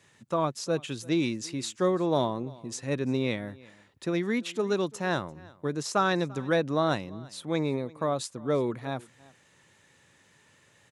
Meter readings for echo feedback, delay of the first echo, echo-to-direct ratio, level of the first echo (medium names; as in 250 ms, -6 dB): no regular repeats, 342 ms, -23.0 dB, -23.0 dB